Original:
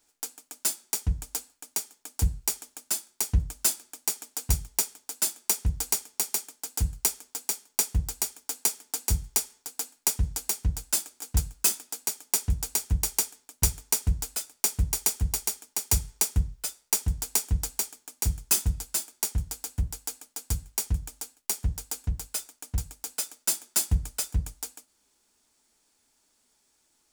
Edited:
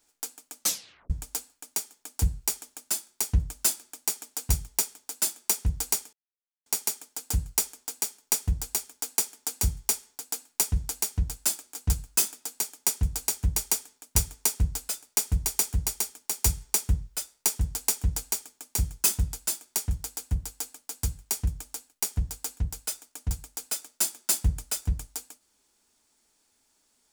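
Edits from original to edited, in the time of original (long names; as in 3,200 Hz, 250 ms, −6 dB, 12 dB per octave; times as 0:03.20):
0:00.59: tape stop 0.51 s
0:06.13: splice in silence 0.53 s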